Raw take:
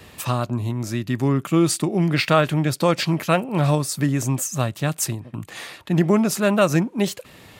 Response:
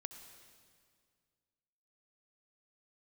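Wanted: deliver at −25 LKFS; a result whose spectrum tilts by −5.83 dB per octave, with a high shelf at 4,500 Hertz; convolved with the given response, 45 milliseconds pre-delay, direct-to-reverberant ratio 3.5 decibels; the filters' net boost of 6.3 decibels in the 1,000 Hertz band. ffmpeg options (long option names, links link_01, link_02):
-filter_complex "[0:a]equalizer=frequency=1000:width_type=o:gain=8.5,highshelf=frequency=4500:gain=-5.5,asplit=2[link_01][link_02];[1:a]atrim=start_sample=2205,adelay=45[link_03];[link_02][link_03]afir=irnorm=-1:irlink=0,volume=0dB[link_04];[link_01][link_04]amix=inputs=2:normalize=0,volume=-6.5dB"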